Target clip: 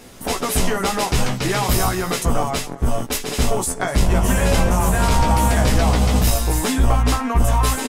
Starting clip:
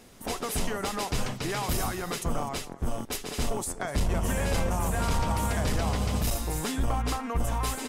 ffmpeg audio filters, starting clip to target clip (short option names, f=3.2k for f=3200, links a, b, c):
-filter_complex "[0:a]asplit=2[a][b];[b]adelay=16,volume=-4.5dB[c];[a][c]amix=inputs=2:normalize=0,volume=9dB"